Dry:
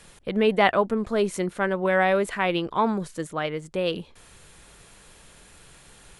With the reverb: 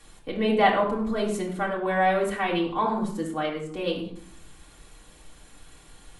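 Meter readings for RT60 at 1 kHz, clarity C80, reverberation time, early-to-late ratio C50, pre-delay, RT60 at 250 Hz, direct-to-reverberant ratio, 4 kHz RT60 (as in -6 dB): 0.65 s, 9.5 dB, 0.65 s, 6.0 dB, 3 ms, 0.95 s, -3.5 dB, 0.40 s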